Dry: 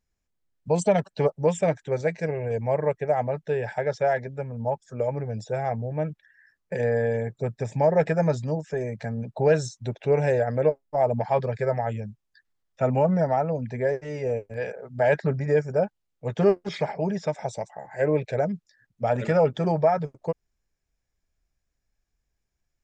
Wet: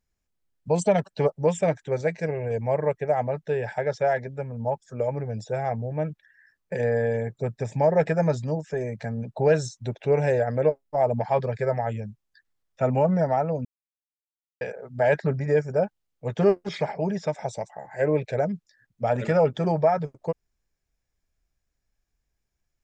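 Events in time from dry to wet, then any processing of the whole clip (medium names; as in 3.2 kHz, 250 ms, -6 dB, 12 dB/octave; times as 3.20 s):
13.65–14.61 s: mute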